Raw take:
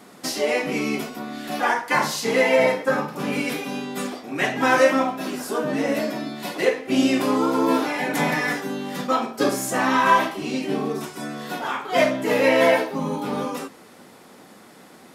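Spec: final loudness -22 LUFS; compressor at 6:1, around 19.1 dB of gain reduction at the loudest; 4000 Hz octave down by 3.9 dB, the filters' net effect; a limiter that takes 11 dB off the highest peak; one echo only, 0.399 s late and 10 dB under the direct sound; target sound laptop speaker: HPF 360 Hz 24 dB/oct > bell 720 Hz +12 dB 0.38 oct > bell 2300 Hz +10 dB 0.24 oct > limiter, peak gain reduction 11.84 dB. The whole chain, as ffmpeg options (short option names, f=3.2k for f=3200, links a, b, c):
-af "equalizer=f=4k:t=o:g=-6.5,acompressor=threshold=-34dB:ratio=6,alimiter=level_in=8.5dB:limit=-24dB:level=0:latency=1,volume=-8.5dB,highpass=f=360:w=0.5412,highpass=f=360:w=1.3066,equalizer=f=720:t=o:w=0.38:g=12,equalizer=f=2.3k:t=o:w=0.24:g=10,aecho=1:1:399:0.316,volume=21dB,alimiter=limit=-14dB:level=0:latency=1"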